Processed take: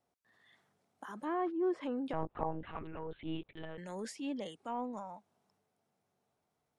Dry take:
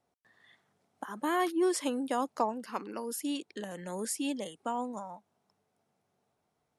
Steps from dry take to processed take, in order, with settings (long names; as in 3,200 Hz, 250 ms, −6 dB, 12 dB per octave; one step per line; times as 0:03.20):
treble cut that deepens with the level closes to 1,100 Hz, closed at −26 dBFS
0:02.13–0:03.78: one-pitch LPC vocoder at 8 kHz 160 Hz
transient designer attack −6 dB, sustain +3 dB
level −3.5 dB